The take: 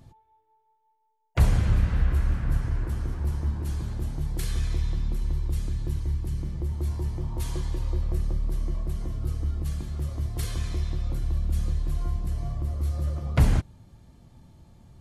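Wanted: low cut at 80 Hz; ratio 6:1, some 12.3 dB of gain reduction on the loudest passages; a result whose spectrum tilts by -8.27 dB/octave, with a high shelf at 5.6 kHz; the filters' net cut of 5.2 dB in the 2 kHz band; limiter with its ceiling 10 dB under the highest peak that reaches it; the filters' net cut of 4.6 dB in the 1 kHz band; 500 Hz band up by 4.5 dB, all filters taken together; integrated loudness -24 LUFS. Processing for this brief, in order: high-pass 80 Hz; peaking EQ 500 Hz +8.5 dB; peaking EQ 1 kHz -9 dB; peaking EQ 2 kHz -3 dB; treble shelf 5.6 kHz -8 dB; compression 6:1, threshold -30 dBFS; trim +13.5 dB; peak limiter -14 dBFS

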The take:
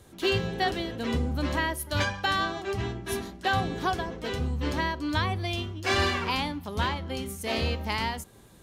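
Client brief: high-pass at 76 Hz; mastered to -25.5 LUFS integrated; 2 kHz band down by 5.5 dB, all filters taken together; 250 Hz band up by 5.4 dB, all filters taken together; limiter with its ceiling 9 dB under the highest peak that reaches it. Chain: high-pass 76 Hz; peaking EQ 250 Hz +7 dB; peaking EQ 2 kHz -7.5 dB; trim +6.5 dB; peak limiter -16 dBFS

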